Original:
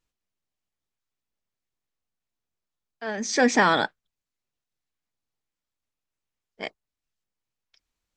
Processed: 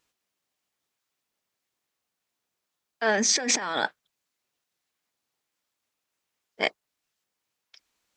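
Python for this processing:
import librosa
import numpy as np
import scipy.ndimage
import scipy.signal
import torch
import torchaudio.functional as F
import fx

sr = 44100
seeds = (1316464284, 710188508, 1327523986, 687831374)

y = fx.highpass(x, sr, hz=360.0, slope=6)
y = fx.over_compress(y, sr, threshold_db=-30.0, ratio=-1.0)
y = F.gain(torch.from_numpy(y), 4.0).numpy()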